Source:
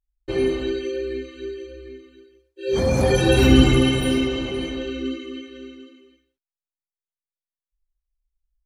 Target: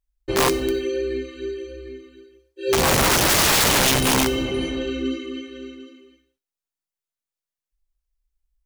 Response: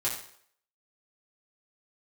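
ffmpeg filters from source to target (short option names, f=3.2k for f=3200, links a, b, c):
-filter_complex "[0:a]aeval=exprs='(mod(5.62*val(0)+1,2)-1)/5.62':c=same,asplit=2[a][b];[b]highshelf=f=3.3k:t=q:w=1.5:g=14[c];[1:a]atrim=start_sample=2205[d];[c][d]afir=irnorm=-1:irlink=0,volume=-29.5dB[e];[a][e]amix=inputs=2:normalize=0,volume=2dB"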